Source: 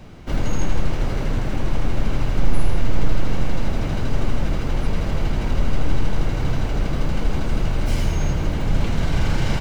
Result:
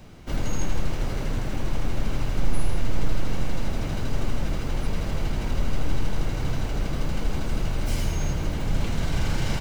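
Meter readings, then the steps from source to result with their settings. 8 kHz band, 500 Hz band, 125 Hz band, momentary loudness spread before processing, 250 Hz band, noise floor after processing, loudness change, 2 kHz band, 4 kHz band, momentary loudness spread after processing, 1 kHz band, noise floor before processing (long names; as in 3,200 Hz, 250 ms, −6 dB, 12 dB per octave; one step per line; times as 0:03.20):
can't be measured, −5.0 dB, −5.0 dB, 3 LU, −5.0 dB, −29 dBFS, −5.0 dB, −4.0 dB, −2.5 dB, 3 LU, −5.0 dB, −24 dBFS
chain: high-shelf EQ 5,400 Hz +8 dB
level −5 dB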